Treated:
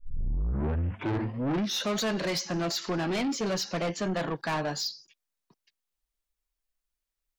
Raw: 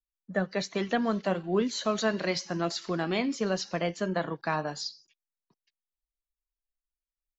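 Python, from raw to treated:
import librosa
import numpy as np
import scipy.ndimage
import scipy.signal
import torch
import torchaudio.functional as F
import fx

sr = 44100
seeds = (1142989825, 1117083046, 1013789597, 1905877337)

y = fx.tape_start_head(x, sr, length_s=1.96)
y = 10.0 ** (-32.0 / 20.0) * np.tanh(y / 10.0 ** (-32.0 / 20.0))
y = y * librosa.db_to_amplitude(6.5)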